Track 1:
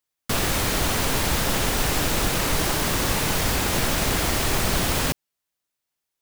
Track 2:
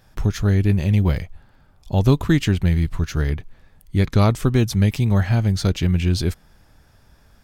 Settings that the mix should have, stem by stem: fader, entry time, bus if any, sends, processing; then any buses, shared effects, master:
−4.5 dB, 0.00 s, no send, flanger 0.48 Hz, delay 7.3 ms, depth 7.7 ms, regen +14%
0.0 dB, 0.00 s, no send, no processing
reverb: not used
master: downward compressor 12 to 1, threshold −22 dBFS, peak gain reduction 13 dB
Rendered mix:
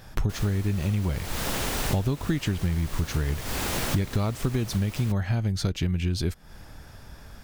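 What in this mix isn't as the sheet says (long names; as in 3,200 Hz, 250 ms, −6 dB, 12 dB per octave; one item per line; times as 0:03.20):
stem 1: missing flanger 0.48 Hz, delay 7.3 ms, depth 7.7 ms, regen +14%
stem 2 0.0 dB → +8.0 dB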